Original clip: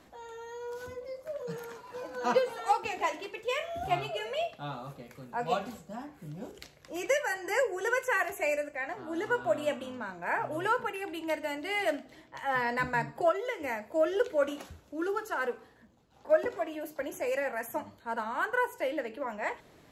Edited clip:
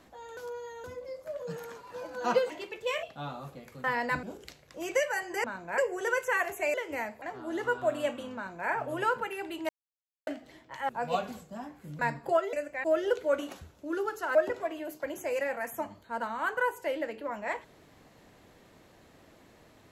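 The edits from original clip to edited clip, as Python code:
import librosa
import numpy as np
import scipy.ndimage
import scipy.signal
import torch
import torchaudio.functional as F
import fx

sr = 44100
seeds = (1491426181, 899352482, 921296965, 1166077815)

y = fx.edit(x, sr, fx.reverse_span(start_s=0.37, length_s=0.47),
    fx.cut(start_s=2.5, length_s=0.62),
    fx.cut(start_s=3.65, length_s=0.81),
    fx.swap(start_s=5.27, length_s=1.1, other_s=12.52, other_length_s=0.39),
    fx.swap(start_s=8.54, length_s=0.31, other_s=13.45, other_length_s=0.48),
    fx.duplicate(start_s=9.98, length_s=0.34, to_s=7.58),
    fx.silence(start_s=11.32, length_s=0.58),
    fx.cut(start_s=15.44, length_s=0.87), tone=tone)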